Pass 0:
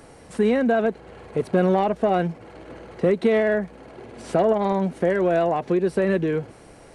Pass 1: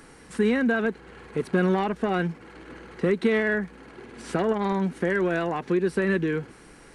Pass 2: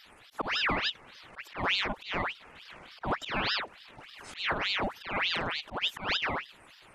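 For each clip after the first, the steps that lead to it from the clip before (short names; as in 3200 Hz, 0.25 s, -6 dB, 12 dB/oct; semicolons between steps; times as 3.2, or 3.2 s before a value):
fifteen-band EQ 100 Hz -10 dB, 630 Hz -12 dB, 1600 Hz +4 dB
bin magnitudes rounded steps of 30 dB; auto swell 0.143 s; ring modulator with a swept carrier 1900 Hz, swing 80%, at 3.4 Hz; gain -2.5 dB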